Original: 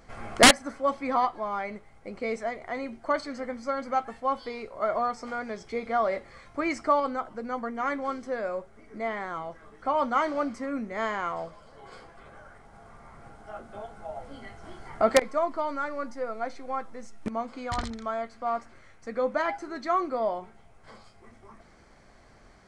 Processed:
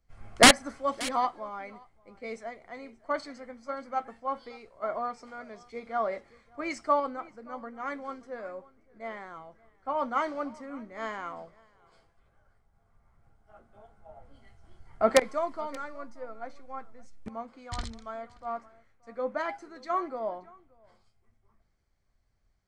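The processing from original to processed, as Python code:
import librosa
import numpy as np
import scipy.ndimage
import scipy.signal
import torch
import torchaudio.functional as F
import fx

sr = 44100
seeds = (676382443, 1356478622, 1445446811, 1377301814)

y = x + 10.0 ** (-17.0 / 20.0) * np.pad(x, (int(578 * sr / 1000.0), 0))[:len(x)]
y = fx.band_widen(y, sr, depth_pct=70)
y = y * librosa.db_to_amplitude(-6.5)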